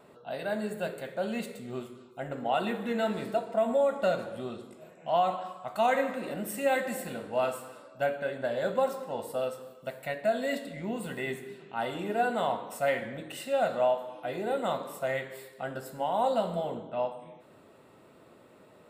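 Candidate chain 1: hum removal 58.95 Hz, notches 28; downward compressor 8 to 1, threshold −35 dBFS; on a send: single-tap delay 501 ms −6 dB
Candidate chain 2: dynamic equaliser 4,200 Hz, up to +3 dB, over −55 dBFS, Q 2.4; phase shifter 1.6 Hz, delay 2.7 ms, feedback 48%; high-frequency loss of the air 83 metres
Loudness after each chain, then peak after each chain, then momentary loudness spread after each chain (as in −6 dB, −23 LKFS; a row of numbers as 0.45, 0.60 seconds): −39.0, −31.0 LKFS; −24.5, −11.5 dBFS; 6, 14 LU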